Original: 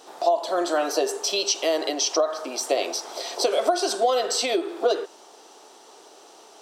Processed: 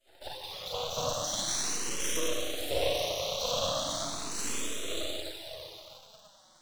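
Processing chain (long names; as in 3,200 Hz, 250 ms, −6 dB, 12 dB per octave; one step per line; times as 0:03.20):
harmonic-percussive split with one part muted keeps percussive
high-pass filter 160 Hz 6 dB per octave
parametric band 3,600 Hz +9.5 dB 0.21 octaves
mains-hum notches 50/100/150/200/250/300/350/400 Hz
four-comb reverb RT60 3.4 s, combs from 31 ms, DRR −8.5 dB
flanger swept by the level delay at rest 7.8 ms, full sweep at −20 dBFS
in parallel at −9.5 dB: bit reduction 6 bits
on the sum: half-wave rectification
frequency shifter mixed with the dry sound +0.39 Hz
level −6.5 dB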